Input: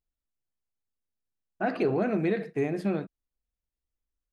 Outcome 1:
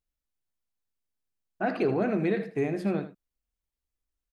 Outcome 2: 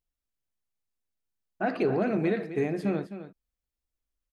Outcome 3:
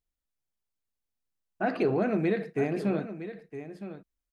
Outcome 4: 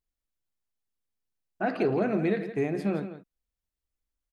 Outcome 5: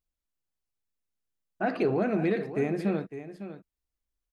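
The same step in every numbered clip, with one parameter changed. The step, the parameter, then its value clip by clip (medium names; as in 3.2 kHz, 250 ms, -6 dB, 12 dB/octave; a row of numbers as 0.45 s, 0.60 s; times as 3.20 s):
delay, time: 79 ms, 260 ms, 963 ms, 168 ms, 554 ms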